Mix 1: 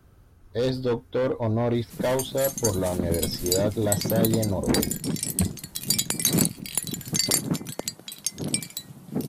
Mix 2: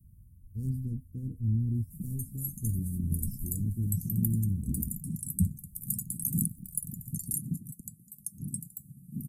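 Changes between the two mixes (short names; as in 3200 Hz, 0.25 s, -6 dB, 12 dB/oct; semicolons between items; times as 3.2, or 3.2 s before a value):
background -4.0 dB; master: add inverse Chebyshev band-stop 590–3800 Hz, stop band 60 dB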